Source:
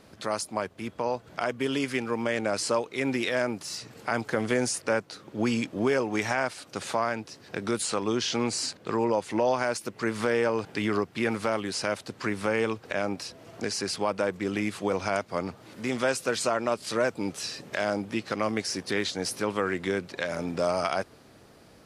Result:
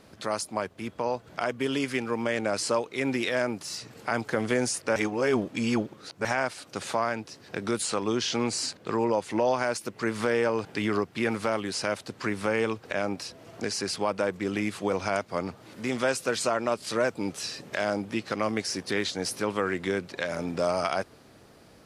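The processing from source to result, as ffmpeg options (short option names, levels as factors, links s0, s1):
-filter_complex "[0:a]asplit=3[s0][s1][s2];[s0]atrim=end=4.962[s3];[s1]atrim=start=4.958:end=6.252,asetpts=PTS-STARTPTS,areverse[s4];[s2]atrim=start=6.248[s5];[s3][s4]acrossfade=d=0.004:c1=hsin:c2=hsin[s6];[s6][s5]acrossfade=d=0.004:c1=hsin:c2=hsin"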